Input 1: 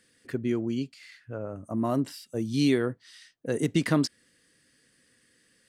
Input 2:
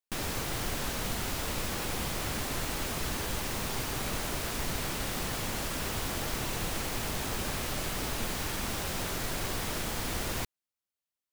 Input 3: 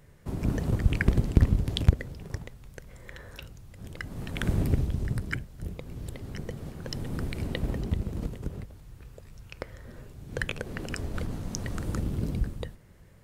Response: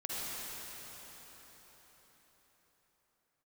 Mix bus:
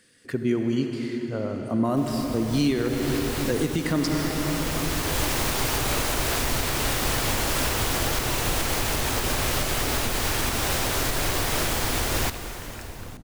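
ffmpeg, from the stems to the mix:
-filter_complex "[0:a]volume=2.5dB,asplit=3[a][b][c];[b]volume=-4.5dB[d];[1:a]equalizer=f=190:w=5.8:g=-12.5,dynaudnorm=f=570:g=3:m=9.5dB,adelay=1850,volume=1dB,asplit=2[e][f];[f]volume=-13.5dB[g];[2:a]acompressor=threshold=-32dB:ratio=2,adelay=1850,volume=-7dB[h];[c]apad=whole_len=580797[i];[e][i]sidechaincompress=threshold=-38dB:ratio=8:attack=16:release=933[j];[3:a]atrim=start_sample=2205[k];[d][g]amix=inputs=2:normalize=0[l];[l][k]afir=irnorm=-1:irlink=0[m];[a][j][h][m]amix=inputs=4:normalize=0,alimiter=limit=-14dB:level=0:latency=1:release=225"

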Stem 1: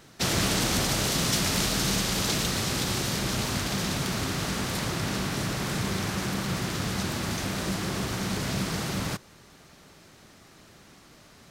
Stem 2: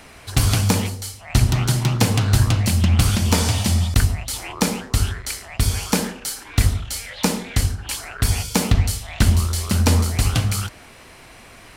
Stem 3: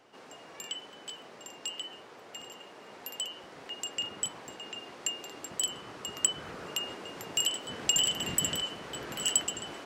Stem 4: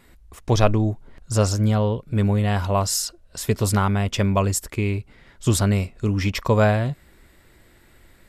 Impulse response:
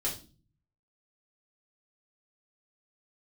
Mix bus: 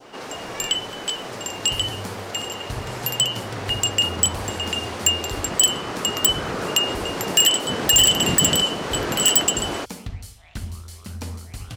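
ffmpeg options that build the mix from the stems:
-filter_complex "[0:a]volume=-19dB[a];[1:a]adelay=1350,volume=-16.5dB[b];[2:a]aeval=exprs='0.316*sin(PI/2*3.55*val(0)/0.316)':c=same,volume=1.5dB[c];[3:a]acompressor=threshold=-23dB:ratio=6,volume=-19.5dB[d];[a][b][c][d]amix=inputs=4:normalize=0,adynamicequalizer=threshold=0.0282:dfrequency=2000:dqfactor=1:tfrequency=2000:tqfactor=1:attack=5:release=100:ratio=0.375:range=2.5:mode=cutabove:tftype=bell"

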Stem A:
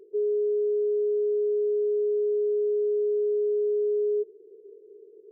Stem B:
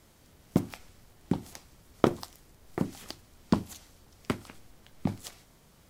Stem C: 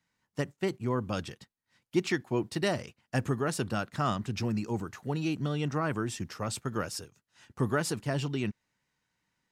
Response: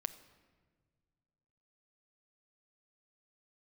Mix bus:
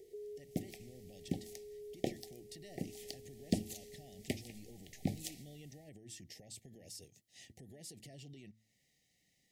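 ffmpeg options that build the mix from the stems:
-filter_complex "[0:a]acompressor=threshold=-29dB:ratio=6,volume=-3dB[a];[1:a]dynaudnorm=f=320:g=5:m=11.5dB,volume=-15dB[b];[2:a]acompressor=threshold=-32dB:ratio=6,alimiter=level_in=15dB:limit=-24dB:level=0:latency=1:release=111,volume=-15dB,volume=2dB,asplit=2[c][d];[d]apad=whole_len=234554[e];[a][e]sidechaincompress=threshold=-59dB:ratio=8:attack=16:release=646[f];[f][c]amix=inputs=2:normalize=0,equalizer=f=2.5k:w=7:g=-4.5,acompressor=threshold=-58dB:ratio=2,volume=0dB[g];[b][g]amix=inputs=2:normalize=0,asuperstop=centerf=1200:order=20:qfactor=1.2,highshelf=f=3.8k:g=7.5,bandreject=f=109.8:t=h:w=4,bandreject=f=219.6:t=h:w=4,bandreject=f=329.4:t=h:w=4"

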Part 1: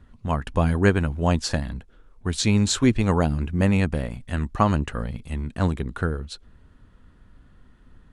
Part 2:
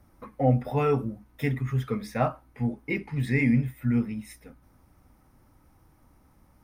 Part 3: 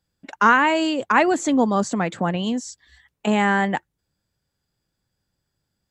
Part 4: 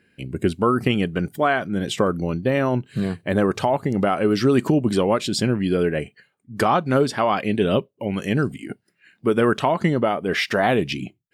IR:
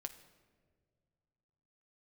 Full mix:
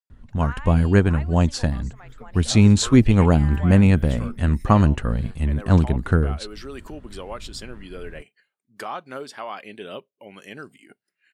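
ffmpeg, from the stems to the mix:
-filter_complex "[0:a]lowshelf=f=330:g=7,adelay=100,volume=-1dB[a];[1:a]adelay=300,volume=-10.5dB[b];[2:a]highpass=720,volume=-20dB,asplit=2[c][d];[3:a]highpass=f=760:p=1,adelay=2200,volume=-15.5dB[e];[d]apad=whole_len=305675[f];[b][f]sidechaincompress=threshold=-56dB:ratio=8:attack=34:release=186[g];[a][g][c][e]amix=inputs=4:normalize=0,dynaudnorm=f=490:g=3:m=5.5dB"

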